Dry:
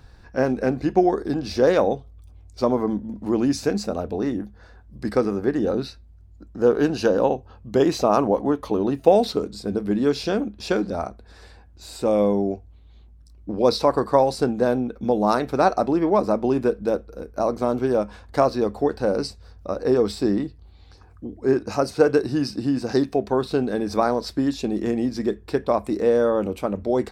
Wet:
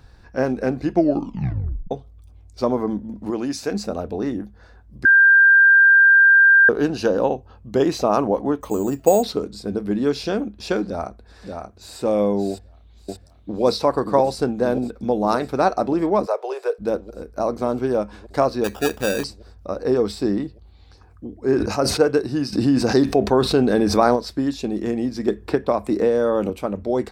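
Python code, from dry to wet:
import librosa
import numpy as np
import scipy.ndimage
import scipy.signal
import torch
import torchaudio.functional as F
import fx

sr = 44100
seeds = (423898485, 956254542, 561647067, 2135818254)

y = fx.low_shelf(x, sr, hz=270.0, db=-10.0, at=(3.3, 3.72))
y = fx.resample_bad(y, sr, factor=6, down='filtered', up='hold', at=(8.61, 9.23))
y = fx.echo_throw(y, sr, start_s=10.85, length_s=1.15, ms=580, feedback_pct=20, wet_db=-5.0)
y = fx.echo_throw(y, sr, start_s=12.5, length_s=1.12, ms=580, feedback_pct=75, wet_db=-1.5)
y = fx.steep_highpass(y, sr, hz=410.0, slope=72, at=(16.25, 16.78), fade=0.02)
y = fx.sample_hold(y, sr, seeds[0], rate_hz=2100.0, jitter_pct=0, at=(18.64, 19.24))
y = fx.sustainer(y, sr, db_per_s=53.0, at=(21.43, 22.0))
y = fx.env_flatten(y, sr, amount_pct=50, at=(22.52, 24.15), fade=0.02)
y = fx.band_squash(y, sr, depth_pct=100, at=(25.28, 26.5))
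y = fx.edit(y, sr, fx.tape_stop(start_s=0.92, length_s=0.99),
    fx.bleep(start_s=5.05, length_s=1.64, hz=1590.0, db=-8.5), tone=tone)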